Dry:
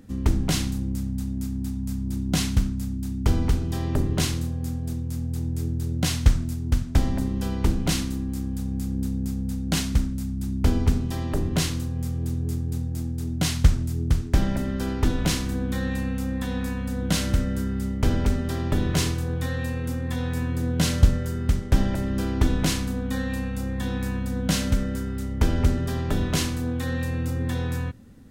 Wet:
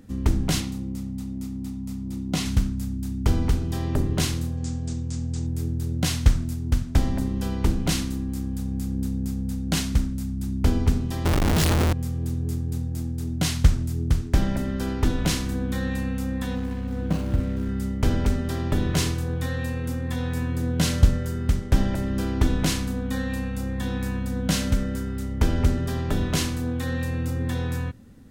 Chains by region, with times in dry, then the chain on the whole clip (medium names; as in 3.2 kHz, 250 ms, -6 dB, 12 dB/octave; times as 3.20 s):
0.60–2.46 s: high-pass 140 Hz 6 dB/octave + treble shelf 5.7 kHz -6.5 dB + band-stop 1.6 kHz, Q 7.6
4.57–5.47 s: steep low-pass 7.9 kHz 48 dB/octave + treble shelf 4.6 kHz +11 dB
11.25–11.93 s: bass shelf 160 Hz +8.5 dB + Schmitt trigger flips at -36.5 dBFS
16.55–17.69 s: median filter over 25 samples + high-pass 41 Hz + doubling 43 ms -14 dB
whole clip: none